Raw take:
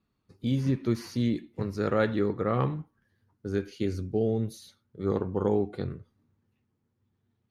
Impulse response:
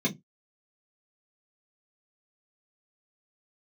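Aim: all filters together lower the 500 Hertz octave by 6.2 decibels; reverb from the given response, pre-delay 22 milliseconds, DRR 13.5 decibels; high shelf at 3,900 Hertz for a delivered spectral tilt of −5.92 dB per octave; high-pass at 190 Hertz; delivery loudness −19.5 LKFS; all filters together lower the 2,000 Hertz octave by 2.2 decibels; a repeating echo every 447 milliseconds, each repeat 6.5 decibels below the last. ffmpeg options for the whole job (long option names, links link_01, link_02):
-filter_complex "[0:a]highpass=190,equalizer=frequency=500:width_type=o:gain=-7.5,equalizer=frequency=2000:width_type=o:gain=-4,highshelf=frequency=3900:gain=7,aecho=1:1:447|894|1341|1788|2235|2682:0.473|0.222|0.105|0.0491|0.0231|0.0109,asplit=2[link_01][link_02];[1:a]atrim=start_sample=2205,adelay=22[link_03];[link_02][link_03]afir=irnorm=-1:irlink=0,volume=-22dB[link_04];[link_01][link_04]amix=inputs=2:normalize=0,volume=13.5dB"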